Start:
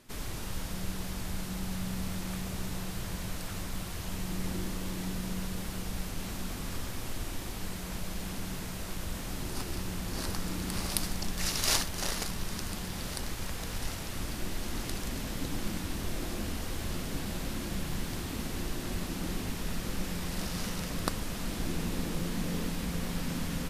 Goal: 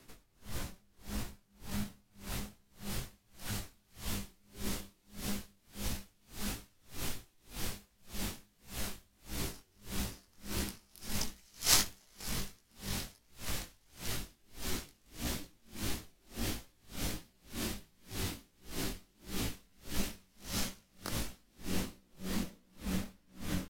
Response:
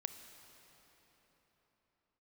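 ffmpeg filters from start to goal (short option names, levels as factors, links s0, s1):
-filter_complex "[0:a]asetrate=48091,aresample=44100,atempo=0.917004,flanger=delay=16:depth=6.2:speed=1.5,acrossover=split=420|790|2100[s0][s1][s2][s3];[s3]dynaudnorm=f=620:g=9:m=1.78[s4];[s0][s1][s2][s4]amix=inputs=4:normalize=0,aeval=exprs='val(0)*pow(10,-36*(0.5-0.5*cos(2*PI*1.7*n/s))/20)':c=same,volume=1.41"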